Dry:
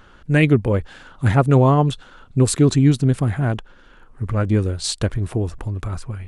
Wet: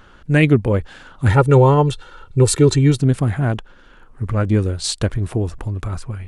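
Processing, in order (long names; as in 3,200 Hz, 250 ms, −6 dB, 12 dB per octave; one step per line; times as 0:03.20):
0:01.28–0:02.98: comb filter 2.2 ms, depth 69%
level +1.5 dB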